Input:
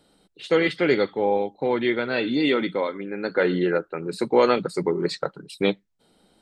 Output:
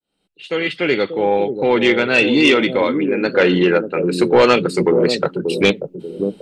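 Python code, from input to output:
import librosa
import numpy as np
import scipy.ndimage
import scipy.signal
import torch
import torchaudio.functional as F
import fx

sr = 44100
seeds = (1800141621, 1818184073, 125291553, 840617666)

p1 = fx.fade_in_head(x, sr, length_s=1.74)
p2 = fx.peak_eq(p1, sr, hz=2700.0, db=11.0, octaves=0.44)
p3 = fx.echo_bbd(p2, sr, ms=586, stages=2048, feedback_pct=35, wet_db=-6.0)
p4 = fx.fold_sine(p3, sr, drive_db=9, ceiling_db=-3.0)
y = p3 + (p4 * librosa.db_to_amplitude(-9.0))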